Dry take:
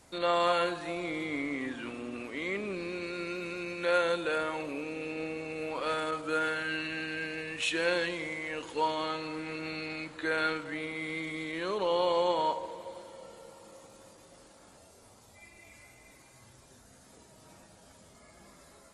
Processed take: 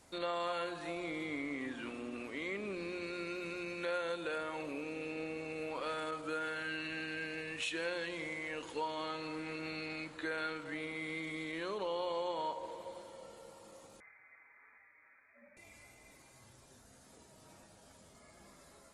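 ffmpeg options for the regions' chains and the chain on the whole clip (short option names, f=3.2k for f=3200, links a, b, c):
-filter_complex "[0:a]asettb=1/sr,asplit=3[a][b][c];[a]atrim=end=14.004[d];[b]atrim=start=14:end=15.57,asetpts=PTS-STARTPTS,afade=t=in:d=0.004:c=qsin,afade=t=out:st=1.566:d=0.004:c=qsin,highpass=f=420:p=1,aecho=1:1:5.6:0.4,atrim=end_sample=69237,lowpass=f=2.2k:t=q:w=0.5098,lowpass=f=2.2k:t=q:w=0.6013,lowpass=f=2.2k:t=q:w=0.9,lowpass=f=2.2k:t=q:w=2.563,afreqshift=-2600[e];[c]atrim=start=15.566[f];[d][e]acrossfade=d=0.004:c1=hsin:c2=qsin[g];[g][f]acrossfade=d=0.004:c1=qsin:c2=hsin,bandreject=f=60:t=h:w=6,bandreject=f=120:t=h:w=6,bandreject=f=180:t=h:w=6,acompressor=threshold=-33dB:ratio=2.5,volume=-3.5dB"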